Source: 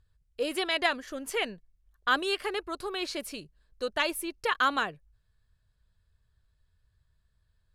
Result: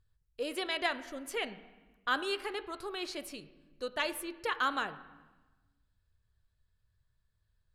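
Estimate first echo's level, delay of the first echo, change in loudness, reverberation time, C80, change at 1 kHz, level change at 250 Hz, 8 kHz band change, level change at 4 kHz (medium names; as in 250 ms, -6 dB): no echo, no echo, -5.0 dB, 1.2 s, 16.0 dB, -5.0 dB, -5.0 dB, -5.5 dB, -5.5 dB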